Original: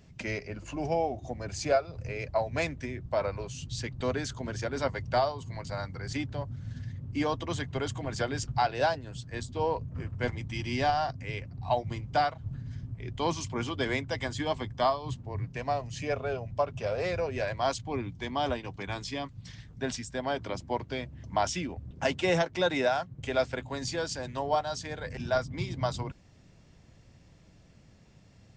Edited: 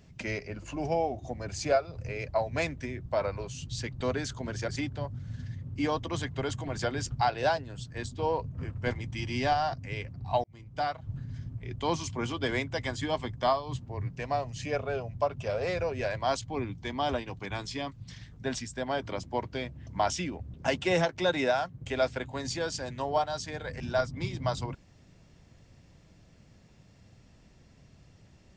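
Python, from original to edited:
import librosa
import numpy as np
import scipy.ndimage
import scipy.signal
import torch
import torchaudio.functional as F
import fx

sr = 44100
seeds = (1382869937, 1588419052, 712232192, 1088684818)

y = fx.edit(x, sr, fx.cut(start_s=4.69, length_s=1.37),
    fx.fade_in_span(start_s=11.81, length_s=0.68), tone=tone)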